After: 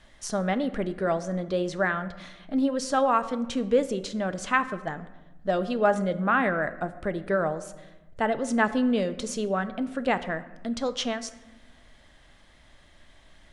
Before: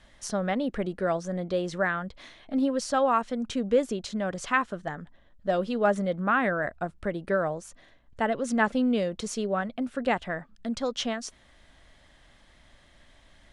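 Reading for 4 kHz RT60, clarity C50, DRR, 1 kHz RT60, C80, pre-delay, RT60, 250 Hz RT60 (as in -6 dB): 0.65 s, 14.5 dB, 11.5 dB, 1.0 s, 16.0 dB, 3 ms, 1.1 s, 1.7 s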